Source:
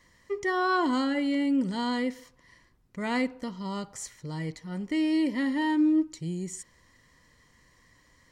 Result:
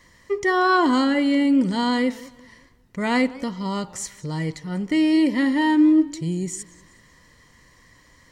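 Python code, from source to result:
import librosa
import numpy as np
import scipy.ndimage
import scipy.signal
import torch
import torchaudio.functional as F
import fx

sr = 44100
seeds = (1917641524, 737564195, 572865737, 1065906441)

y = fx.echo_warbled(x, sr, ms=189, feedback_pct=40, rate_hz=2.8, cents=161, wet_db=-22)
y = F.gain(torch.from_numpy(y), 7.5).numpy()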